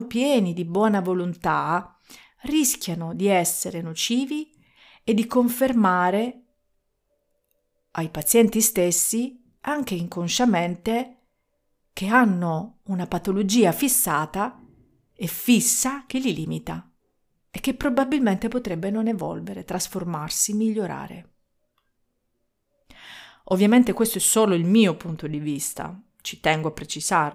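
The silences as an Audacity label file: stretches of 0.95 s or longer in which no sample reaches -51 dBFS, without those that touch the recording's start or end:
6.410000	7.510000	silence
21.780000	22.900000	silence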